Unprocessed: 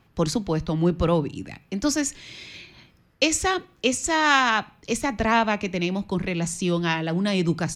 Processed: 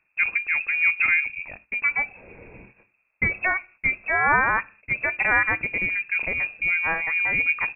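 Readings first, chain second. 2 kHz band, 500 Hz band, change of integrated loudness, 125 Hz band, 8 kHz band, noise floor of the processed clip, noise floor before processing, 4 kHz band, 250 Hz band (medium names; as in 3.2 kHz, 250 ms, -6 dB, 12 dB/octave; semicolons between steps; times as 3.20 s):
+7.5 dB, -10.5 dB, +1.5 dB, -13.5 dB, under -40 dB, -71 dBFS, -60 dBFS, under -15 dB, -17.0 dB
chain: gate -47 dBFS, range -11 dB; frequency inversion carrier 2.6 kHz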